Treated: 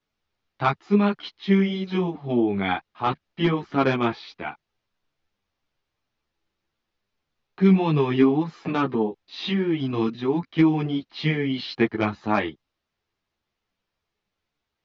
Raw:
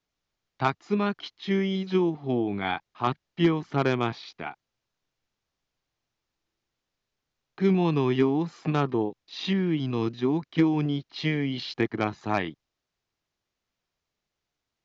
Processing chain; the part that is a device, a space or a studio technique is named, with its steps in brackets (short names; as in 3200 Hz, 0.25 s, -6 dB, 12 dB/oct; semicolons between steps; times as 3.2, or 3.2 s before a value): string-machine ensemble chorus (ensemble effect; LPF 4500 Hz 12 dB/oct); gain +6.5 dB